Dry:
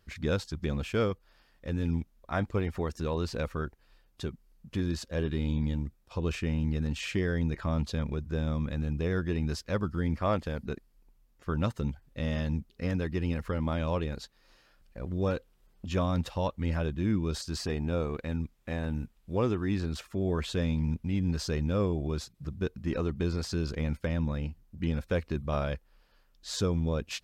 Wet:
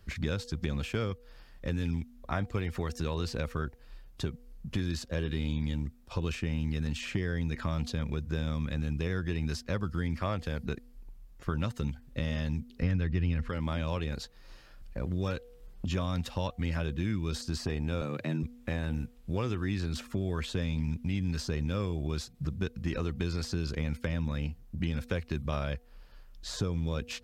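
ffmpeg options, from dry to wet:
-filter_complex "[0:a]asettb=1/sr,asplit=3[a][b][c];[a]atrim=end=12.824[d];[b]atrim=start=12.82:end=13.49,asetpts=PTS-STARTPTS,afade=t=in:d=0.004:c=qsin,afade=t=out:st=0.666:d=0.004:c=qsin,aemphasis=mode=reproduction:type=riaa[e];[c]atrim=start=13.486[f];[d][e]acrossfade=d=0.004:c1=hsin:c2=qsin[g];[g][f]acrossfade=d=0.004:c1=qsin:c2=hsin,asettb=1/sr,asplit=3[h][i][j];[h]atrim=end=18.014[k];[i]atrim=start=18.01:end=18.43,asetpts=PTS-STARTPTS,afade=t=in:d=0.004:c=qsin,afade=t=out:st=0.416:d=0.004:c=qsin,afreqshift=70[l];[j]atrim=start=18.426[m];[k][l]acrossfade=d=0.004:c1=hsin:c2=qsin[n];[n][m]acrossfade=d=0.004:c1=qsin:c2=hsin,lowshelf=f=130:g=10,bandreject=f=242:t=h:w=4,bandreject=f=484:t=h:w=4,bandreject=f=726:t=h:w=4,acrossover=split=120|1500[o][p][q];[o]acompressor=threshold=-44dB:ratio=4[r];[p]acompressor=threshold=-38dB:ratio=4[s];[q]acompressor=threshold=-45dB:ratio=4[t];[r][s][t]amix=inputs=3:normalize=0,volume=5dB"

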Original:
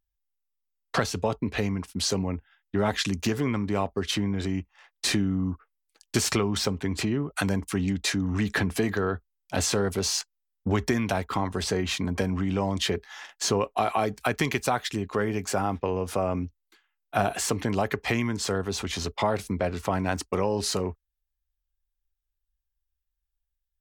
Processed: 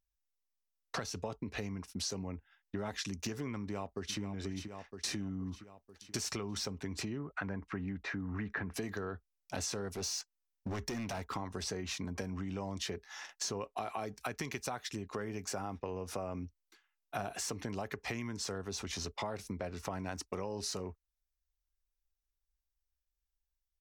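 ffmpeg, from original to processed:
-filter_complex "[0:a]asplit=2[a][b];[b]afade=t=in:st=3.61:d=0.01,afade=t=out:st=4.19:d=0.01,aecho=0:1:480|960|1440|1920|2400|2880:0.334965|0.184231|0.101327|0.0557299|0.0306514|0.0168583[c];[a][c]amix=inputs=2:normalize=0,asettb=1/sr,asplit=3[d][e][f];[d]atrim=end=7.194[g];[e]atrim=start=7.19:end=8.74,asetpts=PTS-STARTPTS,afade=t=in:d=0.004:c=qsin,afade=t=out:st=1.546:d=0.004:c=qsin,lowpass=f=1.7k:t=q:w=1.6[h];[f]atrim=start=8.736[i];[g][h]acrossfade=d=0.004:c1=hsin:c2=qsin[j];[j][i]acrossfade=d=0.004:c1=qsin:c2=hsin,asettb=1/sr,asplit=3[k][l][m];[k]atrim=end=9.914[n];[l]atrim=start=9.91:end=11.29,asetpts=PTS-STARTPTS,afade=t=in:d=0.004:c=qsin,afade=t=out:st=1.376:d=0.004:c=qsin,asoftclip=type=hard:threshold=-25dB[o];[m]atrim=start=11.286[p];[n][o]acrossfade=d=0.004:c1=hsin:c2=qsin[q];[q][p]acrossfade=d=0.004:c1=qsin:c2=hsin,equalizer=f=5.7k:t=o:w=0.37:g=7,bandreject=f=3.2k:w=19,acompressor=threshold=-33dB:ratio=3,volume=-5dB"

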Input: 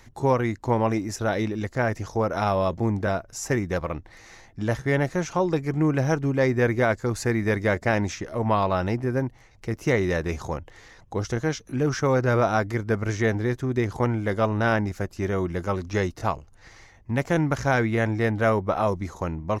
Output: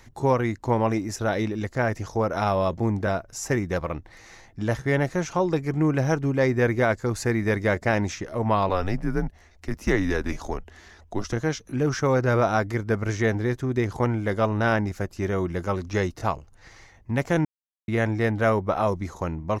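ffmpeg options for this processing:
-filter_complex "[0:a]asettb=1/sr,asplit=3[a][b][c];[a]atrim=end=8.694[d];[b]atrim=start=8.69:end=11.33,asetpts=PTS-STARTPTS,afade=t=in:d=0.004:c=qsin,afade=t=out:st=2.636:d=0.004:c=qsin,afreqshift=-100[e];[c]atrim=start=11.326[f];[d][e]acrossfade=d=0.004:c1=hsin:c2=qsin[g];[g][f]acrossfade=d=0.004:c1=qsin:c2=hsin,asplit=3[h][i][j];[h]atrim=end=17.45,asetpts=PTS-STARTPTS,afade=t=out:st=17.446:d=0.004:c=hsin[k];[i]atrim=start=17.45:end=17.88,asetpts=PTS-STARTPTS,volume=0[l];[j]atrim=start=17.88,asetpts=PTS-STARTPTS,afade=t=in:d=0.004:c=hsin[m];[k][l][m]concat=n=3:v=0:a=1"

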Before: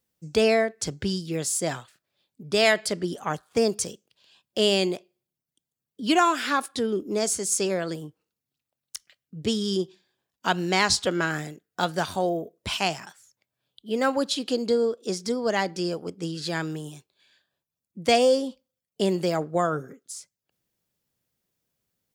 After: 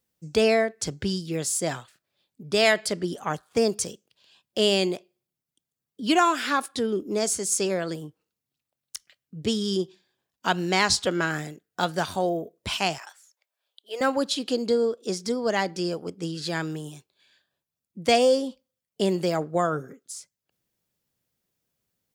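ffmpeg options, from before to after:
-filter_complex "[0:a]asettb=1/sr,asplit=3[a][b][c];[a]atrim=end=12.984[d];[b]atrim=start=12.98:end=14.01,asetpts=PTS-STARTPTS,afade=t=in:d=0.004:c=qsin,afade=t=out:st=1.026:d=0.004:c=qsin,highpass=f=520:w=0.5412,highpass=f=520:w=1.3066[e];[c]atrim=start=14.006[f];[d][e]acrossfade=d=0.004:c1=hsin:c2=qsin[g];[g][f]acrossfade=d=0.004:c1=qsin:c2=hsin"

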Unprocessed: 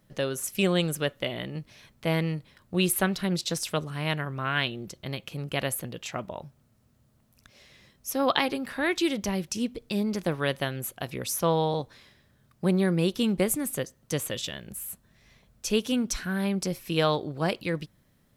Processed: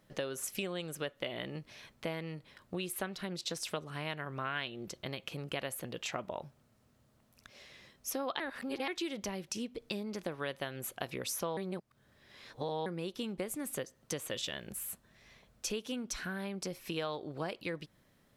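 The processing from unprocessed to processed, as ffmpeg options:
-filter_complex "[0:a]asplit=5[a][b][c][d][e];[a]atrim=end=8.402[f];[b]atrim=start=8.398:end=8.882,asetpts=PTS-STARTPTS,areverse[g];[c]atrim=start=8.878:end=11.572[h];[d]atrim=start=11.568:end=12.862,asetpts=PTS-STARTPTS,areverse[i];[e]atrim=start=12.858[j];[f][g]acrossfade=d=0.004:c1=hsin:c2=hsin[k];[k][h]acrossfade=d=0.004:c1=hsin:c2=hsin[l];[l][i]acrossfade=d=0.004:c1=hsin:c2=hsin[m];[m][j]acrossfade=d=0.004:c1=hsin:c2=hsin,highshelf=f=9.5k:g=-6,acompressor=threshold=-34dB:ratio=6,bass=f=250:g=-7,treble=f=4k:g=-1,volume=1dB"

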